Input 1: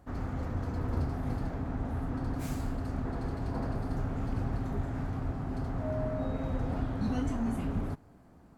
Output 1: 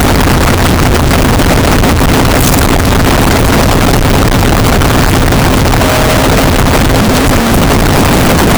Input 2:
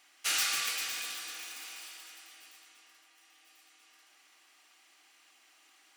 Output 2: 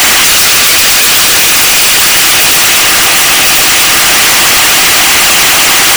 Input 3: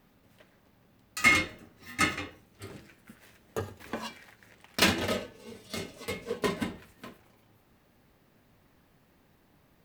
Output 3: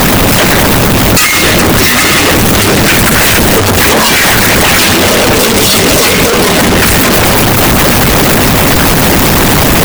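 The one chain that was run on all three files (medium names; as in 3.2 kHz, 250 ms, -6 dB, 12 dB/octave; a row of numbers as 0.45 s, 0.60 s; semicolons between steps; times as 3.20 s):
one-bit comparator; harmonic-percussive split harmonic -8 dB; peak normalisation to -2 dBFS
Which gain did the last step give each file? +30.0 dB, +38.5 dB, +32.0 dB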